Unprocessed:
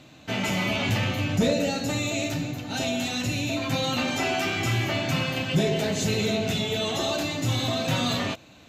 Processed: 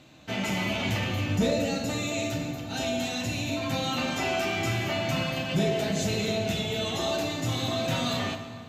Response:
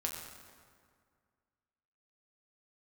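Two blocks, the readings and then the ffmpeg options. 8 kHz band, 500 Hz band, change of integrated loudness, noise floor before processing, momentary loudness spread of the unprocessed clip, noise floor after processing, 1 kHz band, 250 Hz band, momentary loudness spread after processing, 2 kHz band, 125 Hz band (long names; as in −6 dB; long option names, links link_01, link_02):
−3.0 dB, −1.5 dB, −2.5 dB, −50 dBFS, 4 LU, −40 dBFS, −1.5 dB, −2.5 dB, 4 LU, −3.0 dB, −3.0 dB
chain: -filter_complex "[0:a]asplit=2[link_01][link_02];[1:a]atrim=start_sample=2205,asetrate=36603,aresample=44100[link_03];[link_02][link_03]afir=irnorm=-1:irlink=0,volume=-1dB[link_04];[link_01][link_04]amix=inputs=2:normalize=0,volume=-9dB"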